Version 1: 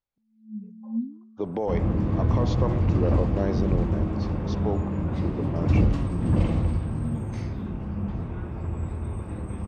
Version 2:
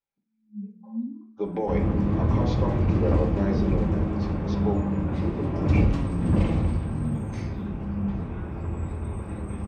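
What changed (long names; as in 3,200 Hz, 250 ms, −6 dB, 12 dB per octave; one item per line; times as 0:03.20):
speech −7.5 dB
first sound −7.5 dB
reverb: on, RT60 0.50 s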